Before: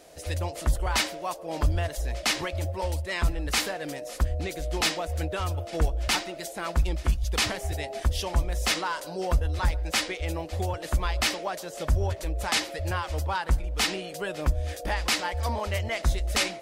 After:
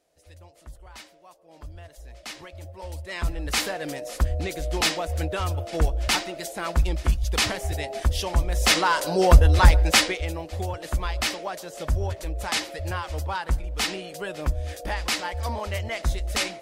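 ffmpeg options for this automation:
-af "volume=11dB,afade=t=in:st=1.48:d=1.29:silence=0.354813,afade=t=in:st=2.77:d=1:silence=0.237137,afade=t=in:st=8.45:d=0.71:silence=0.375837,afade=t=out:st=9.76:d=0.55:silence=0.266073"

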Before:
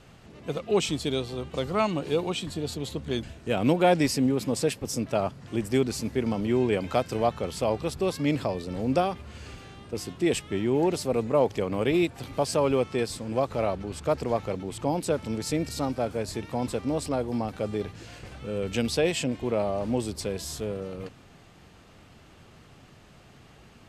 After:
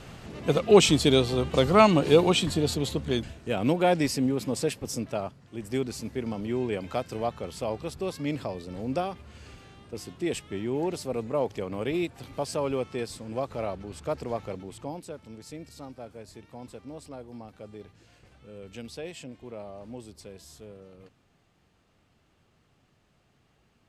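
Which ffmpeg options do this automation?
-af "volume=15dB,afade=t=out:st=2.35:d=1.13:silence=0.334965,afade=t=out:st=4.93:d=0.58:silence=0.298538,afade=t=in:st=5.51:d=0.19:silence=0.421697,afade=t=out:st=14.53:d=0.58:silence=0.354813"

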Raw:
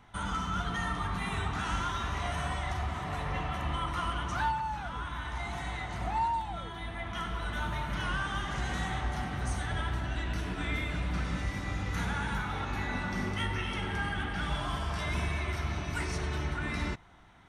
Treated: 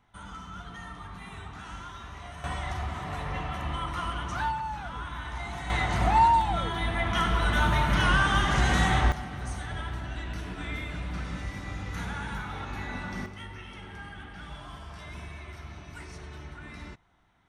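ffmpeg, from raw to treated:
-af "asetnsamples=n=441:p=0,asendcmd='2.44 volume volume 0.5dB;5.7 volume volume 10dB;9.12 volume volume -2dB;13.26 volume volume -9.5dB',volume=-9dB"

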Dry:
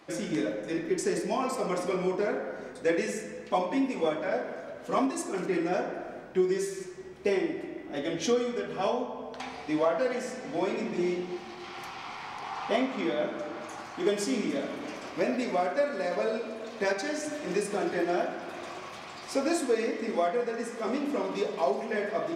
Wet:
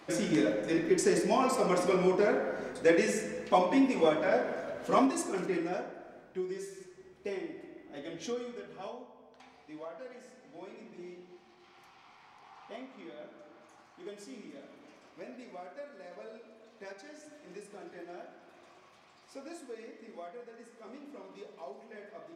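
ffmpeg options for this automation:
-af "volume=2dB,afade=t=out:st=4.88:d=1.06:silence=0.237137,afade=t=out:st=8.46:d=0.67:silence=0.421697"

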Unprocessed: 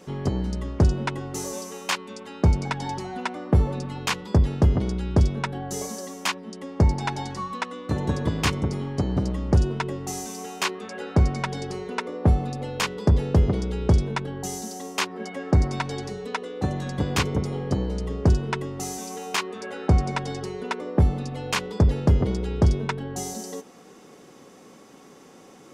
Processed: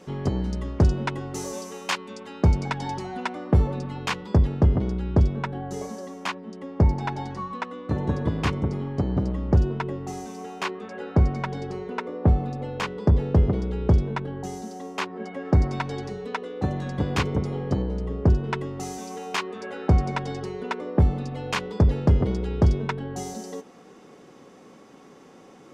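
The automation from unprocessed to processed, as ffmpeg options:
-af "asetnsamples=n=441:p=0,asendcmd='3.67 lowpass f 3200;4.47 lowpass f 1700;15.45 lowpass f 2900;17.82 lowpass f 1400;18.44 lowpass f 3500',lowpass=f=5.9k:p=1"

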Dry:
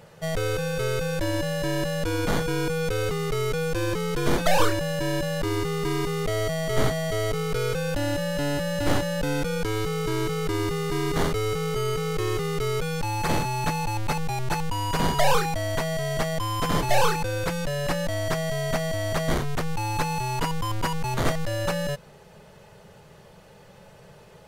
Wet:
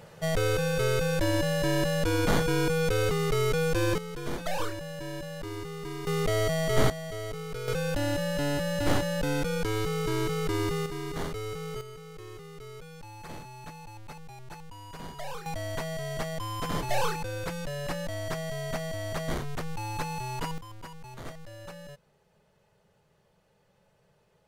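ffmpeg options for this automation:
-af "asetnsamples=n=441:p=0,asendcmd='3.98 volume volume -11dB;6.07 volume volume -0.5dB;6.9 volume volume -10dB;7.68 volume volume -2.5dB;10.86 volume volume -9.5dB;11.81 volume volume -18dB;15.46 volume volume -7dB;20.58 volume volume -17.5dB',volume=0dB"

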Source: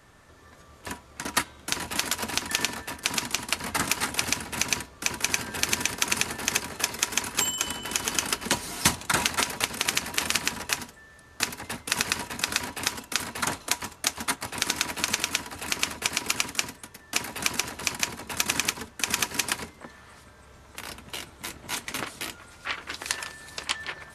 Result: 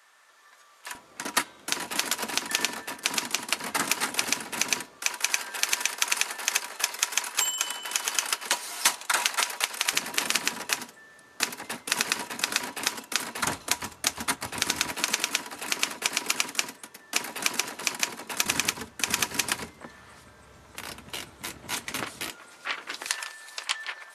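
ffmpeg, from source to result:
-af "asetnsamples=n=441:p=0,asendcmd='0.95 highpass f 230;5 highpass f 640;9.93 highpass f 220;13.44 highpass f 64;14.92 highpass f 240;18.45 highpass f 75;22.29 highpass f 280;23.07 highpass f 700',highpass=970"

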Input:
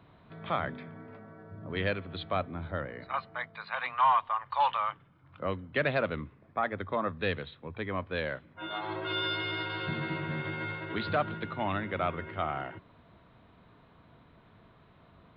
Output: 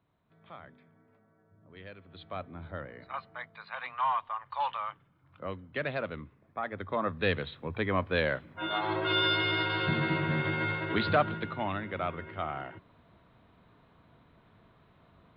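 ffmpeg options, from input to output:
-af "volume=5dB,afade=t=in:st=1.91:d=0.74:silence=0.251189,afade=t=in:st=6.63:d=0.99:silence=0.316228,afade=t=out:st=10.96:d=0.79:silence=0.421697"

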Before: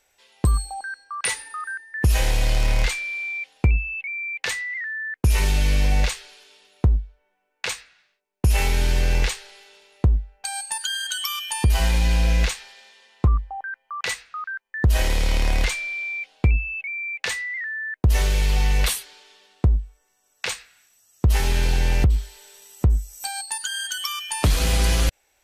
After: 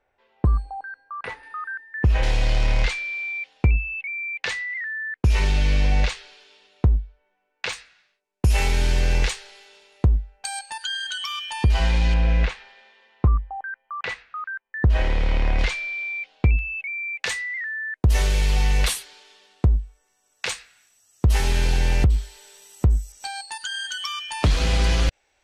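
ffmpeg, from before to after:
-af "asetnsamples=n=441:p=0,asendcmd='1.43 lowpass f 2400;2.23 lowpass f 5000;7.73 lowpass f 9200;10.59 lowpass f 4500;12.14 lowpass f 2500;15.59 lowpass f 4600;16.59 lowpass f 11000;23.12 lowpass f 5400',lowpass=1.4k"

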